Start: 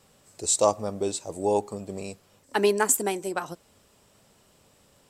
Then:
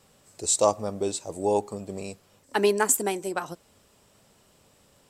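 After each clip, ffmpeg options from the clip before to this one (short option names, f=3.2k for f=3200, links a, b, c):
-af anull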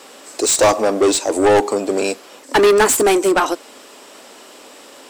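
-filter_complex "[0:a]lowshelf=f=200:t=q:w=3:g=-10.5,asplit=2[a][b];[b]highpass=f=720:p=1,volume=27dB,asoftclip=type=tanh:threshold=-6.5dB[c];[a][c]amix=inputs=2:normalize=0,lowpass=f=5k:p=1,volume=-6dB,volume=2dB"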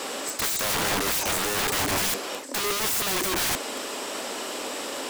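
-af "areverse,acompressor=threshold=-22dB:ratio=16,areverse,aeval=exprs='(mod(28.2*val(0)+1,2)-1)/28.2':c=same,volume=8.5dB"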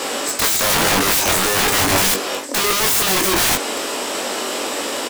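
-filter_complex "[0:a]asplit=2[a][b];[b]adelay=21,volume=-5dB[c];[a][c]amix=inputs=2:normalize=0,volume=8dB"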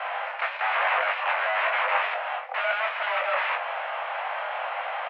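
-af "highpass=f=370:t=q:w=0.5412,highpass=f=370:t=q:w=1.307,lowpass=f=2.4k:t=q:w=0.5176,lowpass=f=2.4k:t=q:w=0.7071,lowpass=f=2.4k:t=q:w=1.932,afreqshift=230,volume=-4.5dB"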